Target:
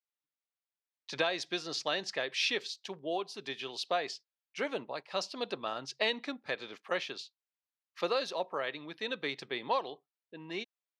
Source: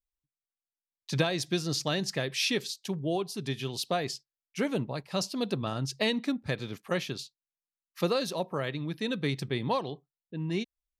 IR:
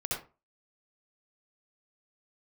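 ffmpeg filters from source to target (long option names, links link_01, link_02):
-af "highpass=510,lowpass=4400"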